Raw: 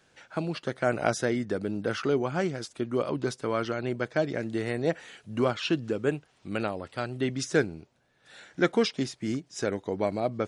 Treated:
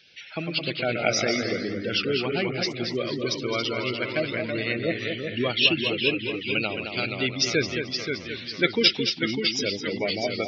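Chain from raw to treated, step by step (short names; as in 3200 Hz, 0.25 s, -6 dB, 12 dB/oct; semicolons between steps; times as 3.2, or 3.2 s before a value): band shelf 3500 Hz +15.5 dB; spectral gate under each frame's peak -15 dB strong; echoes that change speed 80 ms, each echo -1 st, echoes 3, each echo -6 dB; on a send: tape echo 0.216 s, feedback 32%, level -6 dB, low-pass 3500 Hz; on the sum: gain -1 dB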